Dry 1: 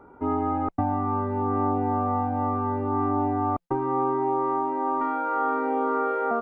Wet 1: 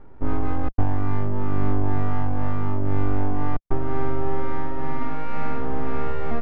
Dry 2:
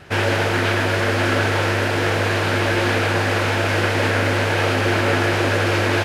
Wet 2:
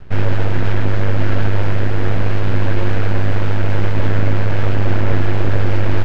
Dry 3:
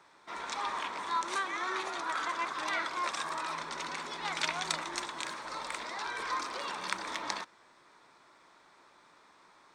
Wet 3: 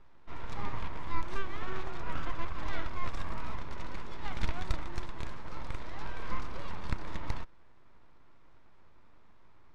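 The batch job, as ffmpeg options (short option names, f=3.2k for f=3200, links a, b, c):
-af "aeval=exprs='max(val(0),0)':c=same,aemphasis=mode=reproduction:type=riaa,volume=-2dB"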